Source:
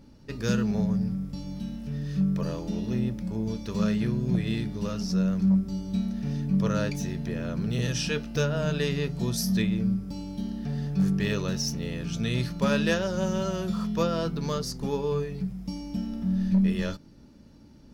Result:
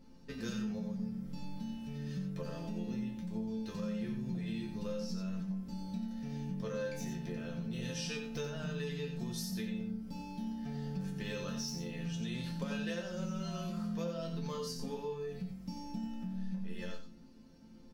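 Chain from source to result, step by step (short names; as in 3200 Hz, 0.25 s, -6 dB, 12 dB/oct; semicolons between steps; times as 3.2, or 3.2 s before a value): resonator bank F3 major, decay 0.29 s; compressor, threshold -47 dBFS, peak gain reduction 12 dB; on a send: echo 90 ms -7 dB; on the sum: gain +10.5 dB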